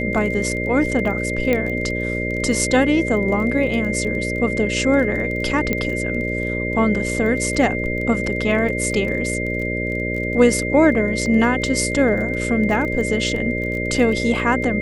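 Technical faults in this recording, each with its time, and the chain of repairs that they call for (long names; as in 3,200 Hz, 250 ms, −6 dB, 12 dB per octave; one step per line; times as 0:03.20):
mains buzz 60 Hz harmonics 10 −25 dBFS
surface crackle 21 per second −27 dBFS
whistle 2,100 Hz −25 dBFS
0:01.53: click −8 dBFS
0:05.73: click −7 dBFS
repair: click removal
hum removal 60 Hz, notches 10
notch filter 2,100 Hz, Q 30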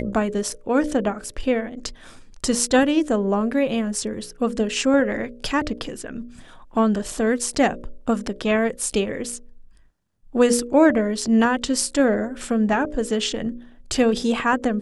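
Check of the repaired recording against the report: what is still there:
none of them is left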